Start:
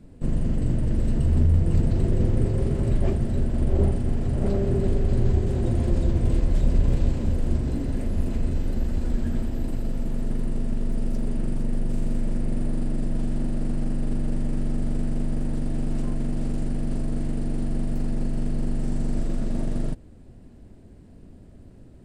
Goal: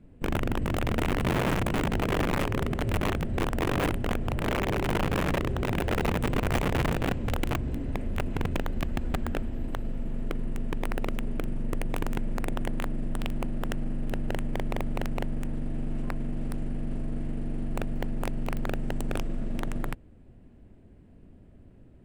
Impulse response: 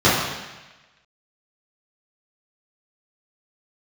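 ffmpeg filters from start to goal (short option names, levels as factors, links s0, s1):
-af "aeval=exprs='(mod(5.96*val(0)+1,2)-1)/5.96':c=same,highshelf=f=3600:t=q:w=1.5:g=-7,volume=0.531"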